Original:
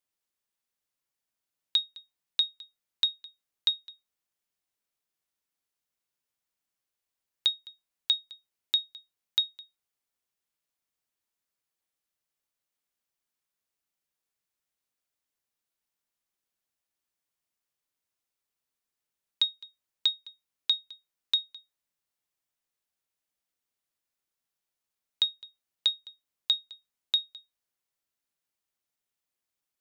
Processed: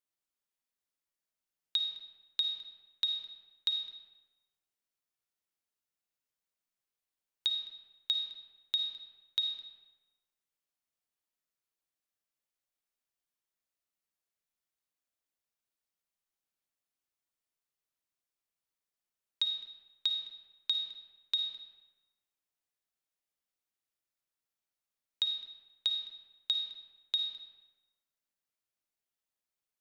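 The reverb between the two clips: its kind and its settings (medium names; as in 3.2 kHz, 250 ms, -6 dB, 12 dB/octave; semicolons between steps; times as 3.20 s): algorithmic reverb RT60 1.2 s, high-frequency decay 0.7×, pre-delay 15 ms, DRR 4 dB; trim -6 dB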